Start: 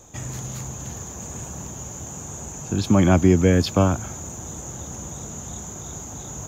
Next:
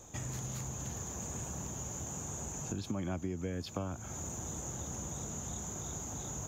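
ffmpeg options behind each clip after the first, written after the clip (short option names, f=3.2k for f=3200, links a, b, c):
-af "acompressor=threshold=-31dB:ratio=5,volume=-5dB"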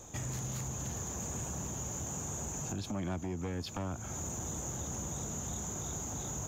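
-af "aeval=exprs='0.075*sin(PI/2*2.51*val(0)/0.075)':c=same,volume=-9dB"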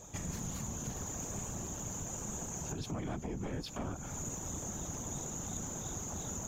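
-af "afftfilt=real='hypot(re,im)*cos(2*PI*random(0))':imag='hypot(re,im)*sin(2*PI*random(1))':win_size=512:overlap=0.75,volume=4.5dB"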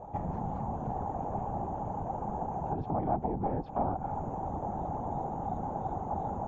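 -af "lowpass=f=810:t=q:w=6.5,volume=4dB"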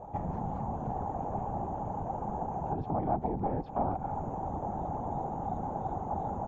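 -filter_complex "[0:a]asplit=2[a][b];[b]adelay=140,highpass=300,lowpass=3.4k,asoftclip=type=hard:threshold=-26.5dB,volume=-25dB[c];[a][c]amix=inputs=2:normalize=0"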